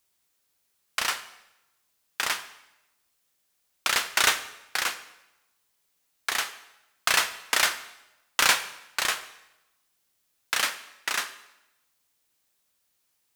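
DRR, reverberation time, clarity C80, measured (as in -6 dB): 11.5 dB, 0.95 s, 15.5 dB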